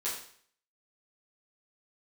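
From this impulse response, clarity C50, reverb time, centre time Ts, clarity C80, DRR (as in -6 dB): 4.0 dB, 0.55 s, 40 ms, 8.0 dB, -9.5 dB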